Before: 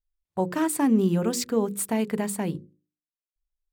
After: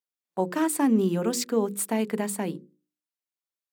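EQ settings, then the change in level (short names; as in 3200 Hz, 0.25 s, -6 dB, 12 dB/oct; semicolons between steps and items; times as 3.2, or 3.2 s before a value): HPF 190 Hz 24 dB/oct; 0.0 dB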